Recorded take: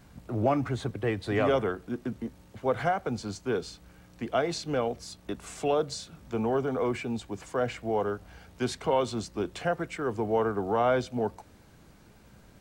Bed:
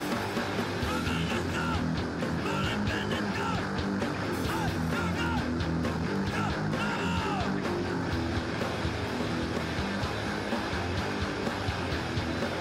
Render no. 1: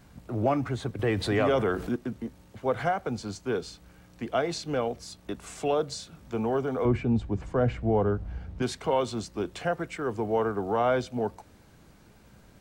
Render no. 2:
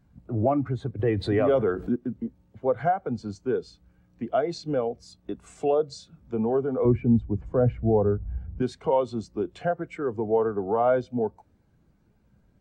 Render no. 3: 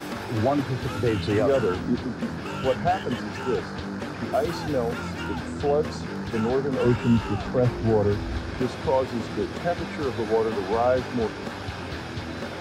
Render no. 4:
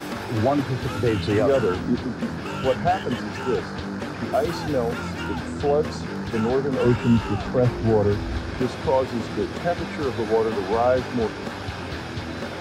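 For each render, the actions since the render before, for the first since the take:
0:00.99–0:01.96: envelope flattener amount 50%; 0:06.85–0:08.62: RIAA equalisation playback
in parallel at +1 dB: downward compressor, threshold −32 dBFS, peak gain reduction 12.5 dB; on the sum: every bin expanded away from the loudest bin 1.5 to 1
mix in bed −2 dB
level +2 dB

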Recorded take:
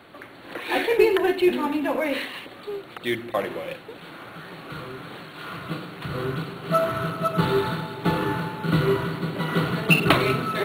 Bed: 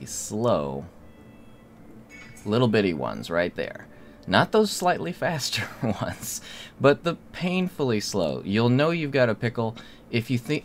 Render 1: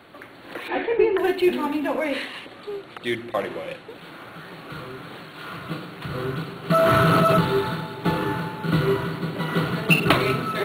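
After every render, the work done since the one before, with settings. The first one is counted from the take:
0:00.68–0:01.18: high-frequency loss of the air 420 metres
0:01.87–0:03.90: low-pass filter 11,000 Hz
0:06.70–0:07.39: envelope flattener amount 100%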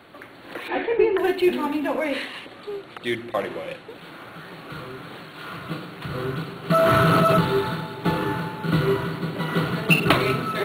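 no processing that can be heard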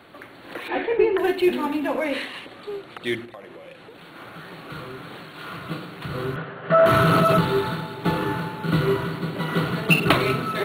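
0:03.25–0:04.16: downward compressor 4 to 1, threshold −40 dBFS
0:06.36–0:06.86: loudspeaker in its box 110–2,900 Hz, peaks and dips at 190 Hz −7 dB, 320 Hz −8 dB, 580 Hz +8 dB, 1,700 Hz +8 dB, 2,400 Hz −5 dB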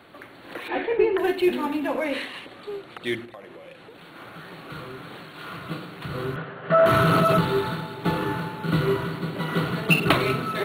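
level −1.5 dB

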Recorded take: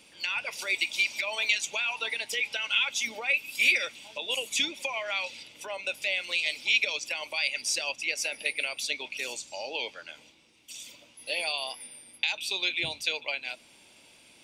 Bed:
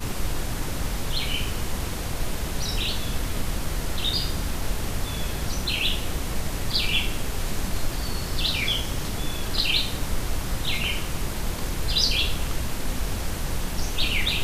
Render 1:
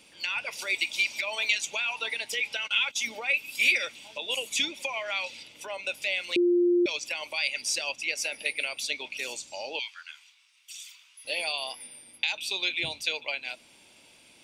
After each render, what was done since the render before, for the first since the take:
0:02.64–0:03.08: noise gate −38 dBFS, range −15 dB
0:06.36–0:06.86: beep over 351 Hz −19 dBFS
0:09.79–0:11.25: Butterworth high-pass 1,100 Hz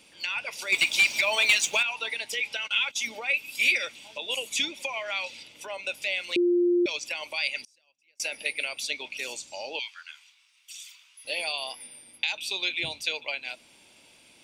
0:00.72–0:01.83: leveller curve on the samples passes 2
0:07.63–0:08.20: gate with flip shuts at −34 dBFS, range −36 dB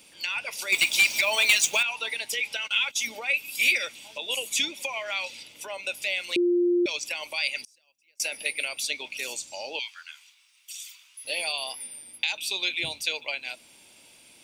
high-shelf EQ 9,200 Hz +12 dB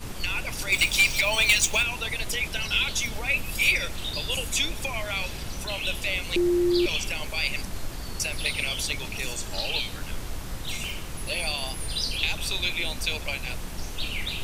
mix in bed −7 dB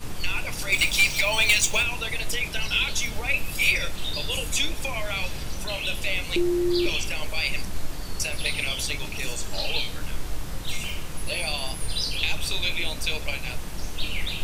rectangular room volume 120 cubic metres, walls furnished, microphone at 0.47 metres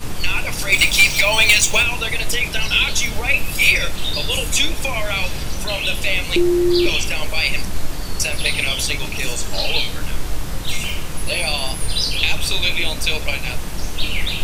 level +7.5 dB
brickwall limiter −1 dBFS, peak gain reduction 2.5 dB

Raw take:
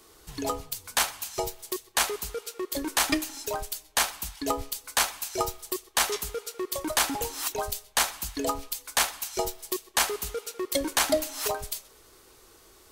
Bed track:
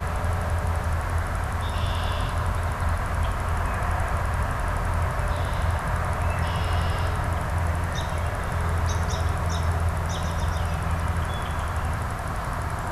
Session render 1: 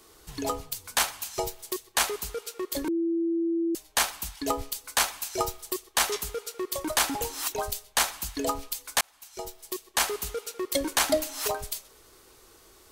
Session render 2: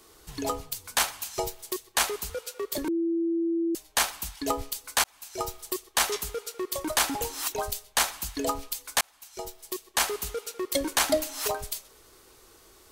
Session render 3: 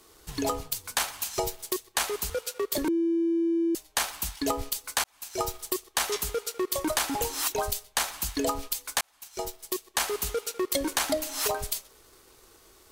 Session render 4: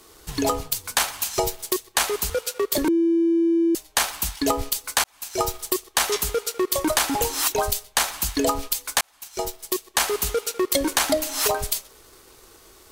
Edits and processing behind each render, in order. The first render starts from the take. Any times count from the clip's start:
0:02.88–0:03.75: beep over 334 Hz −23.5 dBFS; 0:09.01–0:10.12: fade in
0:02.30–0:02.78: frequency shifter +36 Hz; 0:05.04–0:05.63: fade in
downward compressor, threshold −27 dBFS, peak gain reduction 8.5 dB; leveller curve on the samples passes 1
level +6 dB

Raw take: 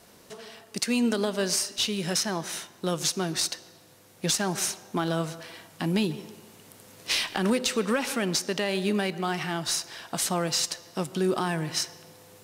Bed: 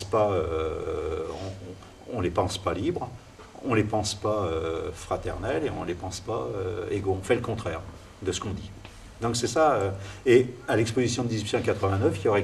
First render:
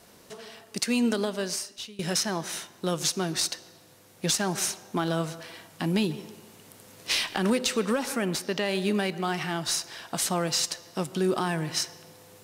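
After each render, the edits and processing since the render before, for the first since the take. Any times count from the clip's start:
0:01.11–0:01.99: fade out, to −22 dB
0:07.91–0:08.63: parametric band 1,800 Hz → 11,000 Hz −8.5 dB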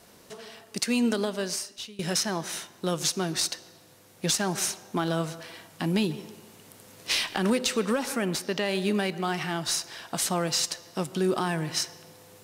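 no processing that can be heard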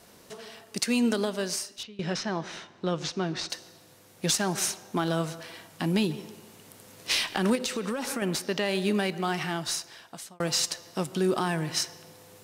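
0:01.83–0:03.50: high-frequency loss of the air 160 metres
0:07.55–0:08.22: downward compressor, threshold −26 dBFS
0:09.46–0:10.40: fade out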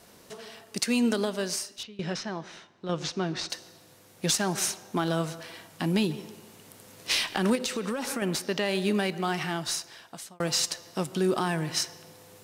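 0:01.95–0:02.89: fade out quadratic, to −7.5 dB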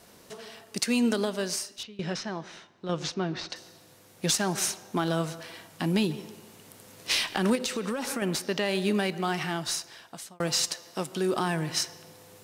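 0:03.14–0:03.56: high-frequency loss of the air 110 metres
0:10.73–0:11.34: high-pass filter 240 Hz 6 dB per octave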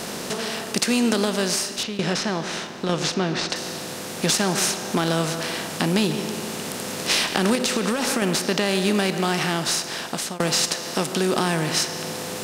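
compressor on every frequency bin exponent 0.6
in parallel at +2.5 dB: downward compressor, threshold −33 dBFS, peak gain reduction 14 dB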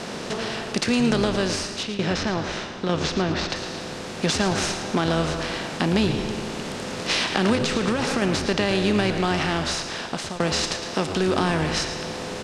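high-frequency loss of the air 87 metres
echo with shifted repeats 112 ms, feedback 44%, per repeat −94 Hz, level −10 dB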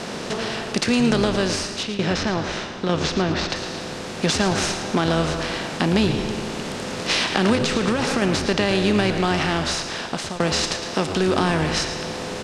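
level +2 dB

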